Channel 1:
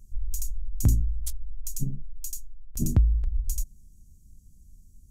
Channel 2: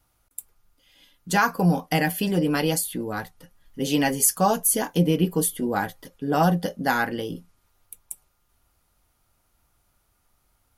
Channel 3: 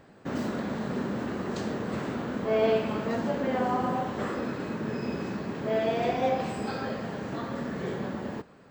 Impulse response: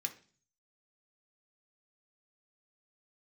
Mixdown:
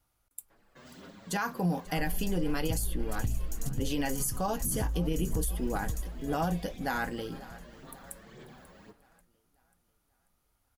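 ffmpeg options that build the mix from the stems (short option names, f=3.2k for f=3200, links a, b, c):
-filter_complex "[0:a]adelay=1850,volume=-5.5dB,asplit=2[a][b];[b]volume=-4dB[c];[1:a]volume=-7.5dB,asplit=2[d][e];[e]volume=-20.5dB[f];[2:a]acrossover=split=220|3000[g][h][i];[h]acompressor=threshold=-39dB:ratio=6[j];[g][j][i]amix=inputs=3:normalize=0,lowshelf=f=420:g=-11,asplit=2[k][l];[l]adelay=6.8,afreqshift=1.3[m];[k][m]amix=inputs=2:normalize=1,adelay=500,volume=-7.5dB[n];[a][n]amix=inputs=2:normalize=0,aphaser=in_gain=1:out_gain=1:delay=1.9:decay=0.47:speed=1.9:type=sinusoidal,acompressor=threshold=-27dB:ratio=6,volume=0dB[o];[c][f]amix=inputs=2:normalize=0,aecho=0:1:539|1078|1617|2156|2695|3234|3773:1|0.49|0.24|0.118|0.0576|0.0282|0.0138[p];[d][o][p]amix=inputs=3:normalize=0,alimiter=limit=-21dB:level=0:latency=1:release=37"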